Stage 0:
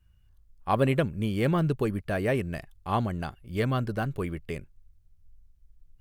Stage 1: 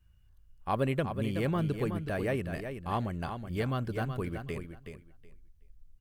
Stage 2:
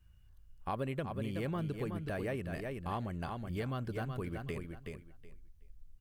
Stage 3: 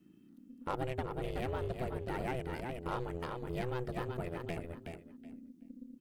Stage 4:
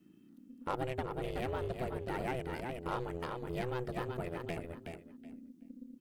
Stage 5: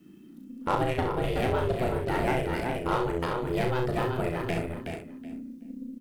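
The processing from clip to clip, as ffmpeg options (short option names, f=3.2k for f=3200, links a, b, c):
-filter_complex "[0:a]asplit=2[a][b];[b]acompressor=threshold=-34dB:ratio=6,volume=0.5dB[c];[a][c]amix=inputs=2:normalize=0,aecho=1:1:373|746|1119:0.398|0.0717|0.0129,volume=-7.5dB"
-af "acompressor=threshold=-38dB:ratio=2.5,volume=1dB"
-af "aeval=exprs='val(0)*sin(2*PI*250*n/s)':c=same,aeval=exprs='0.0562*(cos(1*acos(clip(val(0)/0.0562,-1,1)))-cos(1*PI/2))+0.00282*(cos(8*acos(clip(val(0)/0.0562,-1,1)))-cos(8*PI/2))':c=same,volume=2.5dB"
-af "lowshelf=f=140:g=-4,volume=1dB"
-af "aecho=1:1:35|65:0.562|0.447,volume=8.5dB"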